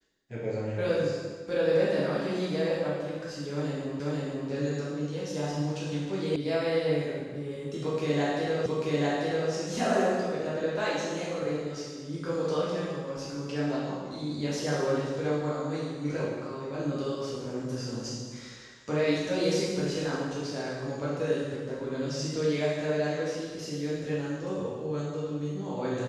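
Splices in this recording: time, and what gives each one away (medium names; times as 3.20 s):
4.00 s: repeat of the last 0.49 s
6.36 s: sound stops dead
8.66 s: repeat of the last 0.84 s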